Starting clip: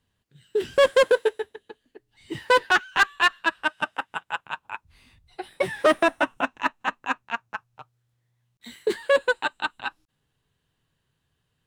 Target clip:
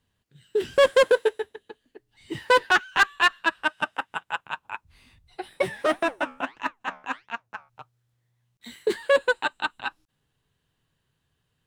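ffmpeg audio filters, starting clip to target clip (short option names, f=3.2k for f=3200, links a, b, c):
-filter_complex "[0:a]asplit=3[a][b][c];[a]afade=t=out:st=5.68:d=0.02[d];[b]flanger=delay=4.3:depth=9.6:regen=-80:speed=1.5:shape=sinusoidal,afade=t=in:st=5.68:d=0.02,afade=t=out:st=7.68:d=0.02[e];[c]afade=t=in:st=7.68:d=0.02[f];[d][e][f]amix=inputs=3:normalize=0"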